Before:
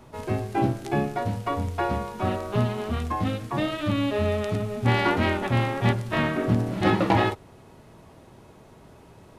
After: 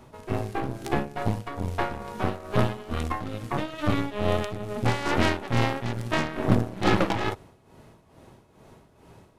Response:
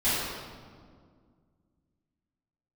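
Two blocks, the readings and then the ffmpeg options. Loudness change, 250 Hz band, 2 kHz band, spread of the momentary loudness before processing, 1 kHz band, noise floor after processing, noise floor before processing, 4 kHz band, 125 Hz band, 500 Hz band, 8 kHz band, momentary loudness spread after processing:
-2.0 dB, -2.5 dB, -1.5 dB, 7 LU, -2.5 dB, -58 dBFS, -51 dBFS, -0.5 dB, -2.5 dB, -2.0 dB, +2.5 dB, 8 LU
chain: -af "aeval=exprs='0.398*(cos(1*acos(clip(val(0)/0.398,-1,1)))-cos(1*PI/2))+0.0794*(cos(4*acos(clip(val(0)/0.398,-1,1)))-cos(4*PI/2))+0.126*(cos(6*acos(clip(val(0)/0.398,-1,1)))-cos(6*PI/2))':c=same,tremolo=f=2.3:d=0.7"

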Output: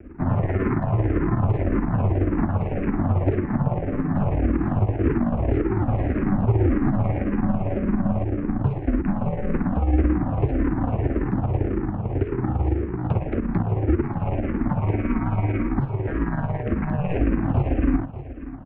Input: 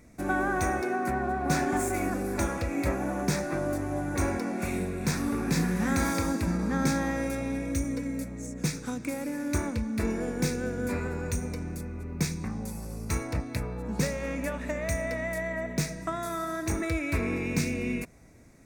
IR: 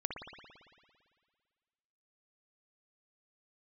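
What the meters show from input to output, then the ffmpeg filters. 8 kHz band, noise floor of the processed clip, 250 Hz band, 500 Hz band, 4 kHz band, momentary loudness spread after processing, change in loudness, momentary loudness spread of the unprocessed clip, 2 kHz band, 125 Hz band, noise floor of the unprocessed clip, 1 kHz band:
under -40 dB, -31 dBFS, +6.5 dB, +4.5 dB, under -10 dB, 4 LU, +6.5 dB, 7 LU, -4.0 dB, +11.0 dB, -40 dBFS, +2.5 dB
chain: -filter_complex "[0:a]equalizer=f=290:w=0.69:g=9,aeval=exprs='val(0)*sin(2*PI*460*n/s)':c=same,lowshelf=f=380:t=q:w=3:g=13,tremolo=f=18:d=0.56,acompressor=threshold=-14dB:ratio=6,aeval=exprs='max(val(0),0)':c=same,asplit=2[a][b];[b]aecho=0:1:590:0.178[c];[a][c]amix=inputs=2:normalize=0,highpass=f=260:t=q:w=0.5412,highpass=f=260:t=q:w=1.307,lowpass=f=2.7k:t=q:w=0.5176,lowpass=f=2.7k:t=q:w=0.7071,lowpass=f=2.7k:t=q:w=1.932,afreqshift=-170,alimiter=level_in=17dB:limit=-1dB:release=50:level=0:latency=1,asplit=2[d][e];[e]afreqshift=-1.8[f];[d][f]amix=inputs=2:normalize=1,volume=-7dB"

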